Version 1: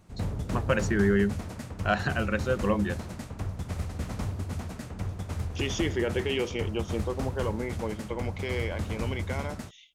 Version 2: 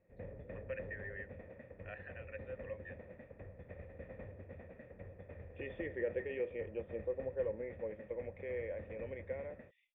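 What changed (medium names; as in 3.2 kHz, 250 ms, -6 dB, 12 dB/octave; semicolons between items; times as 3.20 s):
first voice: add band-pass filter 3.2 kHz, Q 0.87; master: add cascade formant filter e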